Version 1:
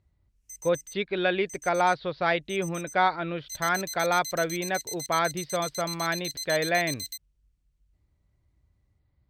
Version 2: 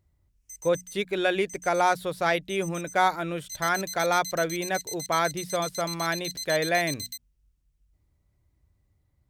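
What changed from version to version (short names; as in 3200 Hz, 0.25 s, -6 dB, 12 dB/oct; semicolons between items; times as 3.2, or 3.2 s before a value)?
speech: remove elliptic low-pass 4600 Hz, stop band 50 dB; master: add notches 60/120/180/240 Hz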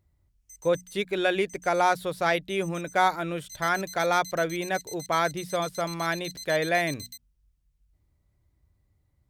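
background -5.5 dB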